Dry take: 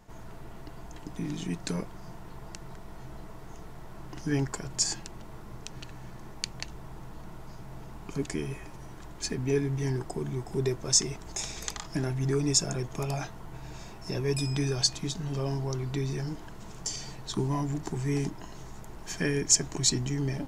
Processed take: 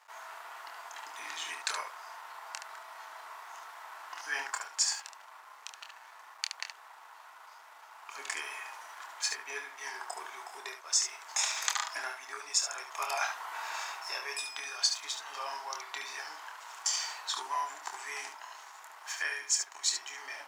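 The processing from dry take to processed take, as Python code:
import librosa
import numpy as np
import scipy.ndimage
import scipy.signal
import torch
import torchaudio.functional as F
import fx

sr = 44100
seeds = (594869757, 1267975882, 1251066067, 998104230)

p1 = fx.rider(x, sr, range_db=10, speed_s=0.5)
p2 = p1 + fx.room_early_taps(p1, sr, ms=(26, 72), db=(-6.5, -7.0), dry=0)
p3 = np.sign(p2) * np.maximum(np.abs(p2) - 10.0 ** (-54.0 / 20.0), 0.0)
p4 = scipy.signal.sosfilt(scipy.signal.butter(4, 980.0, 'highpass', fs=sr, output='sos'), p3)
p5 = fx.high_shelf(p4, sr, hz=2200.0, db=-10.0)
y = p5 * librosa.db_to_amplitude(7.5)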